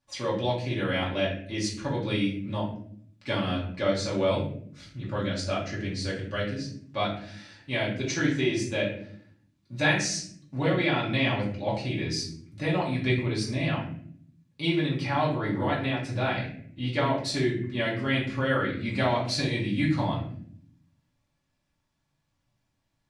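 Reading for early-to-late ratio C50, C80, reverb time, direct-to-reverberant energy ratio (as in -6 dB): 6.0 dB, 10.0 dB, 0.60 s, -7.0 dB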